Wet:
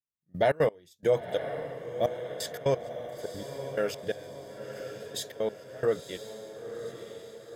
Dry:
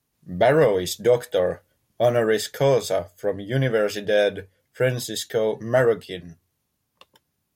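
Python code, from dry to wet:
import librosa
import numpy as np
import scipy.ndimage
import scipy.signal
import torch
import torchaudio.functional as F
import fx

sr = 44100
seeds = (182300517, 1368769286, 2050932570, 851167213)

y = fx.step_gate(x, sr, bpm=175, pattern='....xx.x', floor_db=-24.0, edge_ms=4.5)
y = fx.echo_diffused(y, sr, ms=975, feedback_pct=55, wet_db=-9)
y = y * librosa.db_to_amplitude(-6.5)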